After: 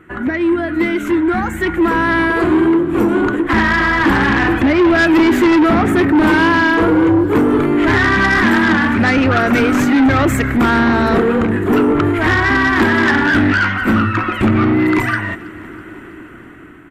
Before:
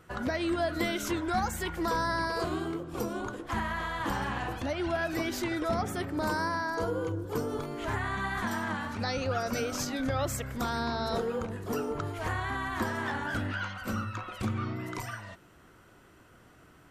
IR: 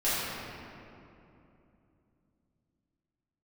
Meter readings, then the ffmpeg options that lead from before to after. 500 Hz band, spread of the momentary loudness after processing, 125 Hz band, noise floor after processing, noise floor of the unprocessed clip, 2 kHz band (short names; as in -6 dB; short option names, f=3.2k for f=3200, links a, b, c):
+17.0 dB, 5 LU, +15.5 dB, -35 dBFS, -57 dBFS, +21.0 dB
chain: -af "firequalizer=gain_entry='entry(140,0);entry(320,12);entry(510,-4);entry(1900,8);entry(5000,-19);entry(7300,-9)':delay=0.05:min_phase=1,dynaudnorm=f=760:g=5:m=15dB,asoftclip=type=tanh:threshold=-15.5dB,aecho=1:1:325|650|975|1300:0.0841|0.0471|0.0264|0.0148,volume=7.5dB"